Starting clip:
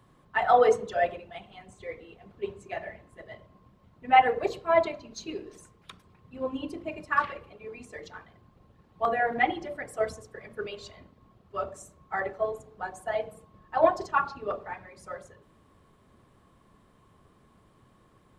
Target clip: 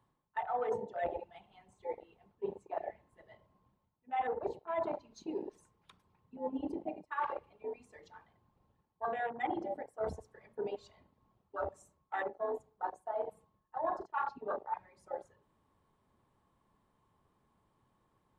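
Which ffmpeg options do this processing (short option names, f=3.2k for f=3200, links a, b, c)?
-af "afwtdn=0.0251,equalizer=f=880:w=5:g=10,areverse,acompressor=threshold=-36dB:ratio=6,areverse,volume=2dB"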